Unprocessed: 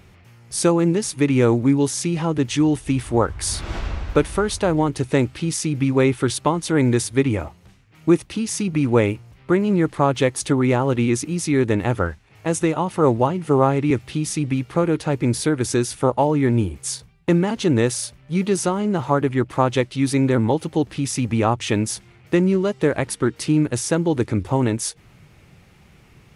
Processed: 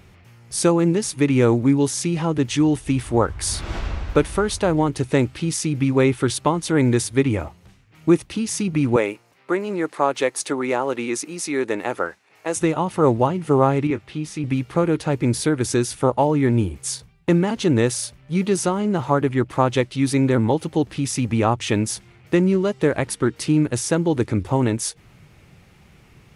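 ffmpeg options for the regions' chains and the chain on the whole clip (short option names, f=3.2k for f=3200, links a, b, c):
-filter_complex "[0:a]asettb=1/sr,asplit=3[a][b][c];[a]atrim=end=8.964[d];[b]atrim=start=8.96:end=12.56,asetpts=PTS-STARTPTS,afade=t=in:d=0.004:c=qsin,afade=t=out:st=3.596:d=0.004:c=qsin,highpass=380,equalizer=f=3.2k:t=o:w=0.29:g=-4[e];[c]atrim=start=12.556[f];[d][e]acrossfade=d=0.004:c1=hsin:c2=qsin[g];[g][f]acrossfade=d=0.004:c1=qsin:c2=hsin,asettb=1/sr,asplit=3[h][i][j];[h]atrim=end=13.874[k];[i]atrim=start=13.87:end=14.44,asetpts=PTS-STARTPTS,afade=t=in:d=0.004:c=qsin,afade=t=out:st=0.566:d=0.004:c=qsin,lowpass=f=2.1k:p=1,lowshelf=f=380:g=-7.5,asplit=2[l][m];[m]adelay=20,volume=-11dB[n];[l][n]amix=inputs=2:normalize=0,atrim=end_sample=25137[o];[j]atrim=start=14.436[p];[k][o]acrossfade=d=0.004:c1=hsin:c2=qsin[q];[q][p]acrossfade=d=0.004:c1=qsin:c2=hsin"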